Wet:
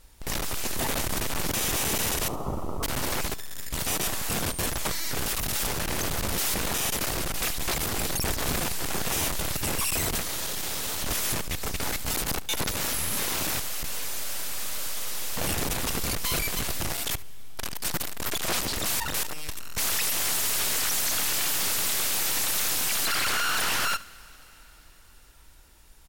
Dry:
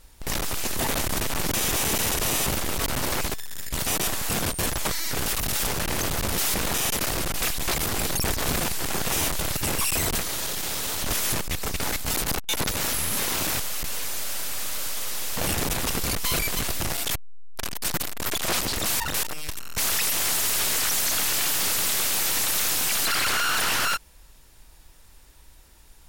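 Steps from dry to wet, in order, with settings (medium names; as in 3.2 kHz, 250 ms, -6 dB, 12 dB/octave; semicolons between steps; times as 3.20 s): 2.28–2.83 s: steep low-pass 1.3 kHz 96 dB/octave; delay 72 ms -19 dB; on a send at -22 dB: reverberation RT60 5.0 s, pre-delay 125 ms; on the sum: trim -2.5 dB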